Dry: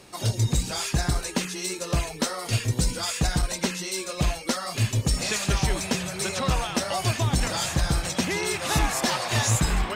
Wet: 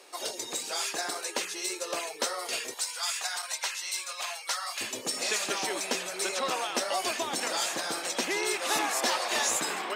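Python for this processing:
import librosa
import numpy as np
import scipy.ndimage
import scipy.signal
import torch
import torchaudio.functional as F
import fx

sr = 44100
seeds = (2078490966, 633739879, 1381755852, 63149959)

y = fx.highpass(x, sr, hz=fx.steps((0.0, 380.0), (2.74, 790.0), (4.81, 310.0)), slope=24)
y = y * 10.0 ** (-2.0 / 20.0)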